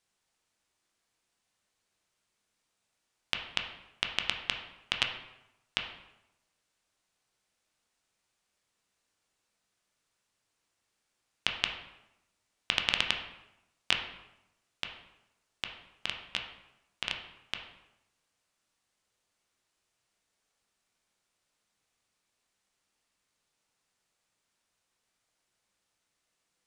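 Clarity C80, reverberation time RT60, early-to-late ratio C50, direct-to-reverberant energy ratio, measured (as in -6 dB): 9.0 dB, 0.90 s, 6.5 dB, 2.5 dB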